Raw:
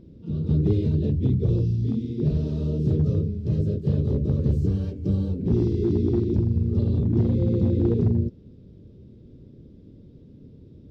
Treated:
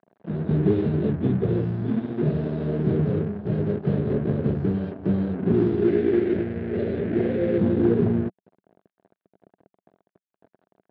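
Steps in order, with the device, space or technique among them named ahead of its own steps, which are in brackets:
blown loudspeaker (dead-zone distortion −40.5 dBFS; loudspeaker in its box 160–3,500 Hz, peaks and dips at 190 Hz +4 dB, 390 Hz +4 dB, 670 Hz +7 dB, 1,600 Hz +7 dB)
0:05.88–0:07.58: octave-band graphic EQ 125/250/500/1,000/2,000 Hz −8/−4/+7/−9/+9 dB
level +2.5 dB

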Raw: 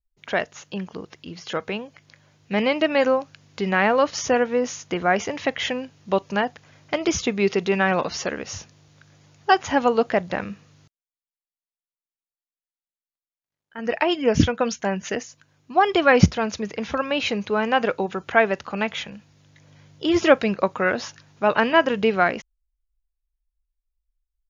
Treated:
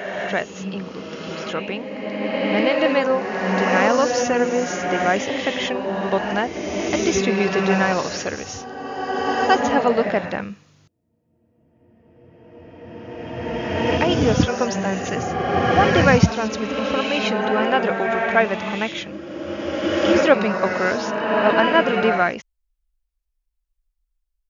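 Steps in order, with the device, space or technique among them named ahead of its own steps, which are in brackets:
reverse reverb (reversed playback; convolution reverb RT60 2.9 s, pre-delay 64 ms, DRR 0.5 dB; reversed playback)

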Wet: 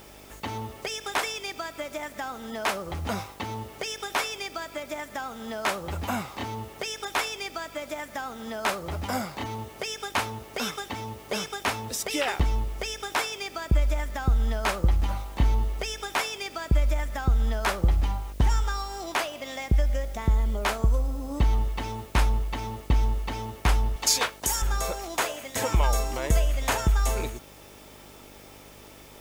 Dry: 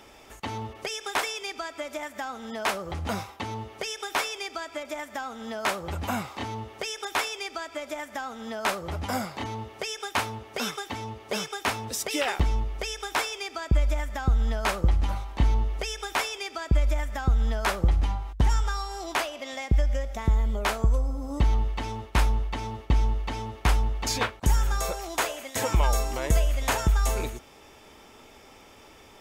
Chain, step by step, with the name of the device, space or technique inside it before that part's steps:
0:23.96–0:24.62: bass and treble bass −15 dB, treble +10 dB
video cassette with head-switching buzz (hum with harmonics 50 Hz, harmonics 13, −53 dBFS −2 dB per octave; white noise bed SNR 28 dB)

